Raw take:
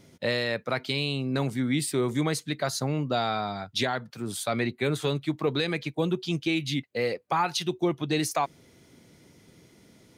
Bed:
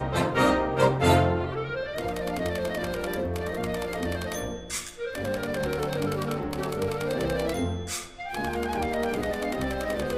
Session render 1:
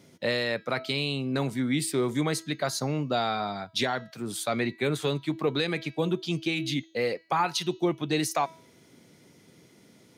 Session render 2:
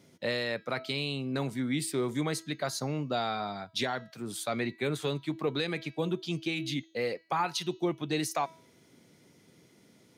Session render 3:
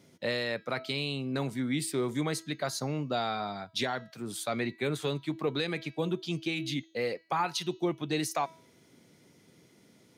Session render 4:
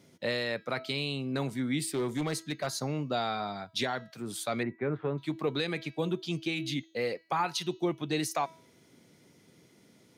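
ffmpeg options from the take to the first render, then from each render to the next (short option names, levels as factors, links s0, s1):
-af "highpass=120,bandreject=f=324.9:t=h:w=4,bandreject=f=649.8:t=h:w=4,bandreject=f=974.7:t=h:w=4,bandreject=f=1299.6:t=h:w=4,bandreject=f=1624.5:t=h:w=4,bandreject=f=1949.4:t=h:w=4,bandreject=f=2274.3:t=h:w=4,bandreject=f=2599.2:t=h:w=4,bandreject=f=2924.1:t=h:w=4,bandreject=f=3249:t=h:w=4,bandreject=f=3573.9:t=h:w=4,bandreject=f=3898.8:t=h:w=4,bandreject=f=4223.7:t=h:w=4,bandreject=f=4548.6:t=h:w=4,bandreject=f=4873.5:t=h:w=4,bandreject=f=5198.4:t=h:w=4,bandreject=f=5523.3:t=h:w=4,bandreject=f=5848.2:t=h:w=4,bandreject=f=6173.1:t=h:w=4,bandreject=f=6498:t=h:w=4,bandreject=f=6822.9:t=h:w=4"
-af "volume=0.631"
-af anull
-filter_complex "[0:a]asettb=1/sr,asplit=3[s0][s1][s2];[s0]atrim=end=1.804[s3];[s1]atrim=start=1.8:end=2.67,asetpts=PTS-STARTPTS,afade=t=in:d=0.004:c=qsin,afade=t=out:st=0.866:d=0.004:c=qsin,asoftclip=type=hard:threshold=0.0501[s4];[s2]atrim=start=2.666[s5];[s3][s4]acrossfade=d=0.004:c1=hsin:c2=qsin[s6];[s6][s5]acrossfade=d=0.004:c1=qsin:c2=hsin,asettb=1/sr,asplit=3[s7][s8][s9];[s7]atrim=end=4.634[s10];[s8]atrim=start=4.63:end=5.18,asetpts=PTS-STARTPTS,afade=t=in:d=0.004:c=qsin,afade=t=out:st=0.546:d=0.004:c=qsin,lowpass=f=1800:w=0.5412,lowpass=f=1800:w=1.3066[s11];[s9]atrim=start=5.176[s12];[s10][s11]acrossfade=d=0.004:c1=hsin:c2=qsin[s13];[s13][s12]acrossfade=d=0.004:c1=qsin:c2=hsin"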